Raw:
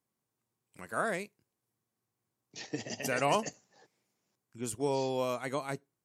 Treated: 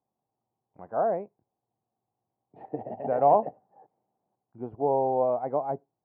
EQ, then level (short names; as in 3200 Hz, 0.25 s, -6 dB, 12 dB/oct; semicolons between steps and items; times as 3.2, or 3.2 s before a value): dynamic EQ 520 Hz, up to +4 dB, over -44 dBFS, Q 1.4; synth low-pass 780 Hz, resonance Q 4.9; air absorption 440 m; 0.0 dB